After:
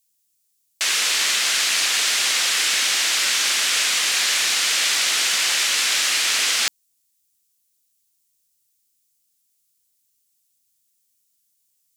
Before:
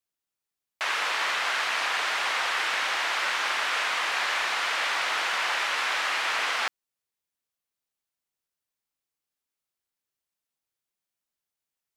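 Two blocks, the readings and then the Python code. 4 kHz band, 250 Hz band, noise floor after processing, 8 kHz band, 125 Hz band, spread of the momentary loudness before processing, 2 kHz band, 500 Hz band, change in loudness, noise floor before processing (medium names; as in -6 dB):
+11.0 dB, +6.0 dB, -69 dBFS, +19.0 dB, no reading, 0 LU, +3.5 dB, -1.0 dB, +8.5 dB, under -85 dBFS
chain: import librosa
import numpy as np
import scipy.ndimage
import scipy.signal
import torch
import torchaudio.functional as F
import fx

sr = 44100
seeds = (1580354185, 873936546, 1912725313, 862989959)

y = fx.curve_eq(x, sr, hz=(240.0, 930.0, 7400.0), db=(0, -15, 12))
y = F.gain(torch.from_numpy(y), 8.5).numpy()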